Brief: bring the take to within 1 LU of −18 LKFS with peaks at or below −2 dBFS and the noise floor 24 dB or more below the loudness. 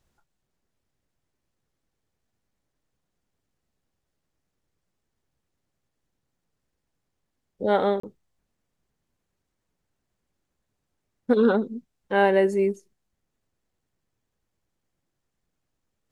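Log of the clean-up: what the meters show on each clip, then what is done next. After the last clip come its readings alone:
number of dropouts 1; longest dropout 34 ms; integrated loudness −23.0 LKFS; sample peak −8.5 dBFS; target loudness −18.0 LKFS
→ repair the gap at 0:08.00, 34 ms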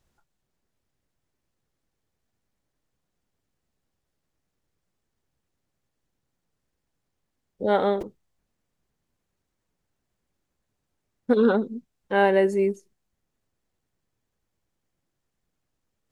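number of dropouts 0; integrated loudness −23.0 LKFS; sample peak −8.5 dBFS; target loudness −18.0 LKFS
→ level +5 dB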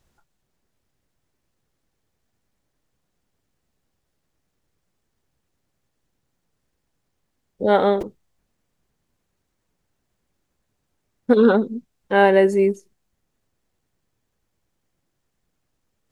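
integrated loudness −18.0 LKFS; sample peak −3.5 dBFS; background noise floor −75 dBFS

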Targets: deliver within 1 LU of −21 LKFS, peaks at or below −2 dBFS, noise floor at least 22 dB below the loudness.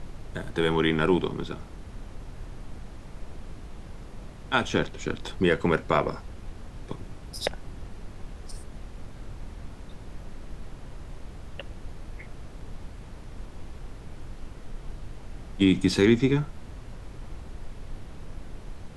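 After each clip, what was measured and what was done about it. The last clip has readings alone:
background noise floor −44 dBFS; target noise floor −48 dBFS; integrated loudness −26.0 LKFS; sample peak −8.0 dBFS; target loudness −21.0 LKFS
→ noise reduction from a noise print 6 dB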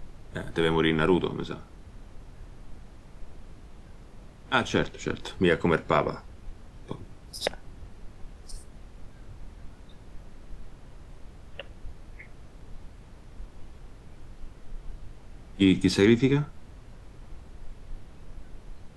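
background noise floor −49 dBFS; integrated loudness −25.5 LKFS; sample peak −8.5 dBFS; target loudness −21.0 LKFS
→ level +4.5 dB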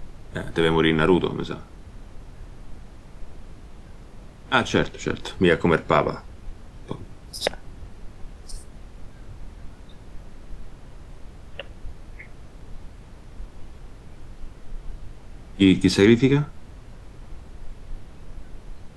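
integrated loudness −21.0 LKFS; sample peak −4.0 dBFS; background noise floor −45 dBFS

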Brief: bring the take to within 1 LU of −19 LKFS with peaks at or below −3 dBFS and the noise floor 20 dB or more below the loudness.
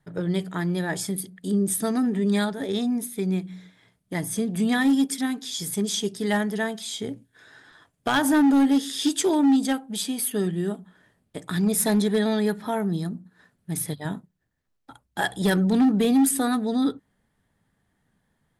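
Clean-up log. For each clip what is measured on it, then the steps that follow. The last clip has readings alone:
share of clipped samples 1.3%; peaks flattened at −15.0 dBFS; integrated loudness −24.0 LKFS; sample peak −15.0 dBFS; target loudness −19.0 LKFS
→ clipped peaks rebuilt −15 dBFS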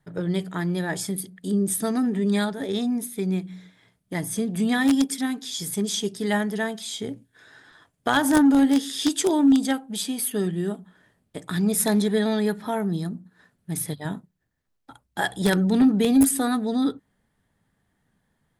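share of clipped samples 0.0%; integrated loudness −23.5 LKFS; sample peak −6.0 dBFS; target loudness −19.0 LKFS
→ level +4.5 dB
brickwall limiter −3 dBFS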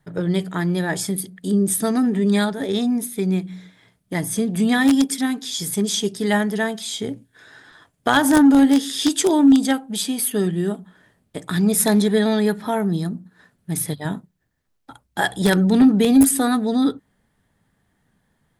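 integrated loudness −19.5 LKFS; sample peak −3.0 dBFS; background noise floor −69 dBFS

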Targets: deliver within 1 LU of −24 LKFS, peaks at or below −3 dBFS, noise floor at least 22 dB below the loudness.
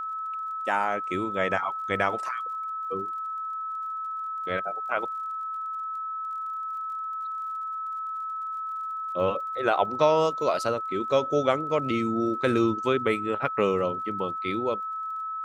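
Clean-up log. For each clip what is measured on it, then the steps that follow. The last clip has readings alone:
crackle rate 37 per second; interfering tone 1,300 Hz; level of the tone −30 dBFS; integrated loudness −28.0 LKFS; sample peak −7.0 dBFS; target loudness −24.0 LKFS
→ click removal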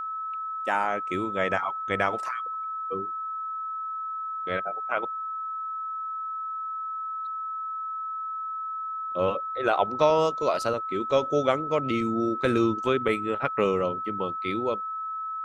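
crackle rate 0.065 per second; interfering tone 1,300 Hz; level of the tone −30 dBFS
→ notch filter 1,300 Hz, Q 30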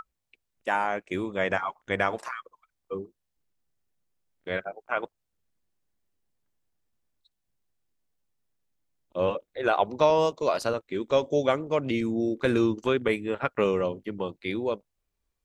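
interfering tone none found; integrated loudness −27.5 LKFS; sample peak −7.5 dBFS; target loudness −24.0 LKFS
→ level +3.5 dB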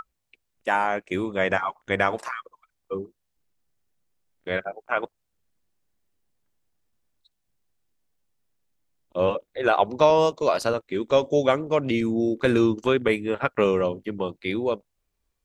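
integrated loudness −24.5 LKFS; sample peak −4.0 dBFS; background noise floor −78 dBFS

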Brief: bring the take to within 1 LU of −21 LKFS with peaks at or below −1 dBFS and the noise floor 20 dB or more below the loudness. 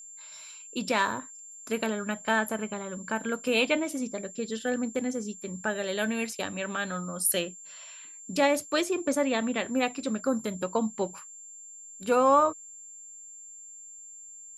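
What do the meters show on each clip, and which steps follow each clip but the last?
interfering tone 7,300 Hz; level of the tone −44 dBFS; integrated loudness −29.0 LKFS; sample peak −9.5 dBFS; target loudness −21.0 LKFS
→ notch filter 7,300 Hz, Q 30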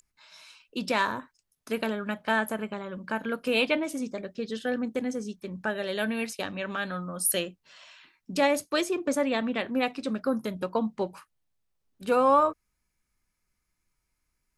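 interfering tone none found; integrated loudness −29.0 LKFS; sample peak −10.0 dBFS; target loudness −21.0 LKFS
→ level +8 dB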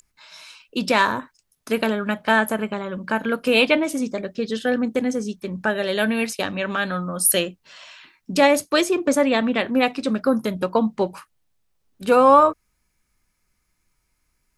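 integrated loudness −21.0 LKFS; sample peak −2.0 dBFS; background noise floor −71 dBFS

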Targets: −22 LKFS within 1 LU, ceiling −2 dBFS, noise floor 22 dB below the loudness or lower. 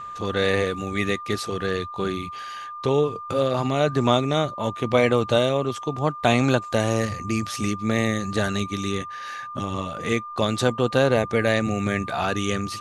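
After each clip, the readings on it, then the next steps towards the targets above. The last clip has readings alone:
interfering tone 1,200 Hz; level of the tone −33 dBFS; integrated loudness −24.0 LKFS; sample peak −4.0 dBFS; target loudness −22.0 LKFS
→ notch filter 1,200 Hz, Q 30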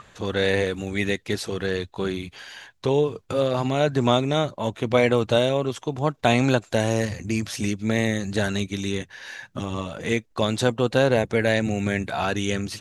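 interfering tone none found; integrated loudness −24.0 LKFS; sample peak −4.5 dBFS; target loudness −22.0 LKFS
→ level +2 dB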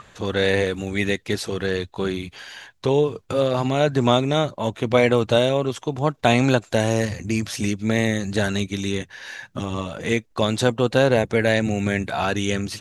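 integrated loudness −22.0 LKFS; sample peak −2.5 dBFS; background noise floor −57 dBFS

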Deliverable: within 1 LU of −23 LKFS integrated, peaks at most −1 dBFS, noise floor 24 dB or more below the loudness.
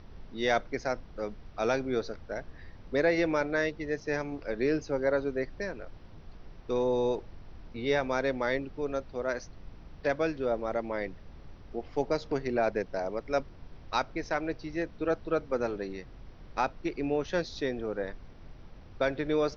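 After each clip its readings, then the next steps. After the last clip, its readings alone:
background noise floor −50 dBFS; target noise floor −56 dBFS; integrated loudness −32.0 LKFS; sample peak −13.5 dBFS; target loudness −23.0 LKFS
→ noise reduction from a noise print 6 dB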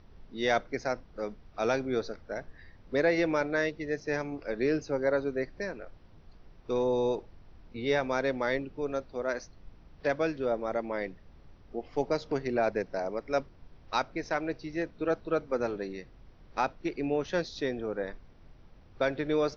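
background noise floor −55 dBFS; target noise floor −56 dBFS
→ noise reduction from a noise print 6 dB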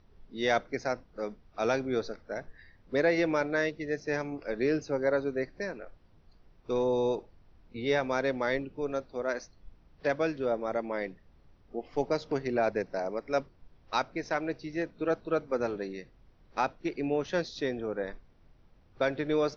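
background noise floor −61 dBFS; integrated loudness −32.0 LKFS; sample peak −13.5 dBFS; target loudness −23.0 LKFS
→ level +9 dB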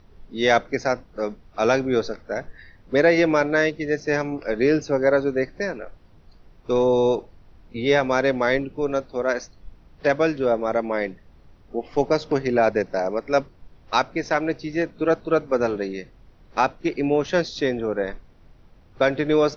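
integrated loudness −23.0 LKFS; sample peak −4.5 dBFS; background noise floor −52 dBFS

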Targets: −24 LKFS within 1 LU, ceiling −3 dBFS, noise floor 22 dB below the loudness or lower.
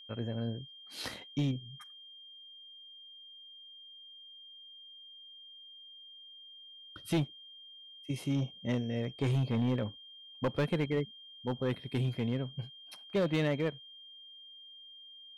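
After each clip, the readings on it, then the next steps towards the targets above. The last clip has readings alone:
share of clipped samples 1.1%; peaks flattened at −24.5 dBFS; interfering tone 3,200 Hz; level of the tone −50 dBFS; integrated loudness −34.5 LKFS; sample peak −24.5 dBFS; target loudness −24.0 LKFS
→ clipped peaks rebuilt −24.5 dBFS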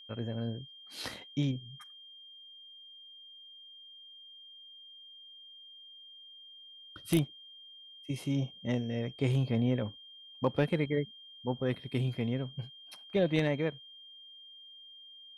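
share of clipped samples 0.0%; interfering tone 3,200 Hz; level of the tone −50 dBFS
→ notch filter 3,200 Hz, Q 30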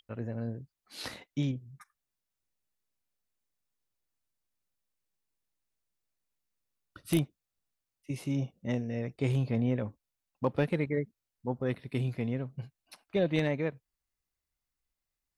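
interfering tone none found; integrated loudness −33.5 LKFS; sample peak −15.5 dBFS; target loudness −24.0 LKFS
→ level +9.5 dB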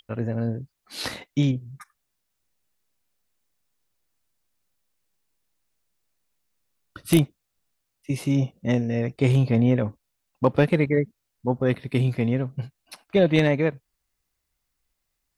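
integrated loudness −24.0 LKFS; sample peak −6.0 dBFS; background noise floor −79 dBFS

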